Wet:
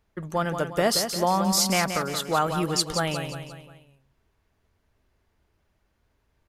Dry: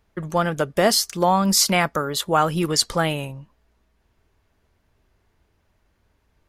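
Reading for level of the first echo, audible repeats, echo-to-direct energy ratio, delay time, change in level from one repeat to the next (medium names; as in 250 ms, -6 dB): -8.0 dB, 4, -7.0 dB, 176 ms, -6.5 dB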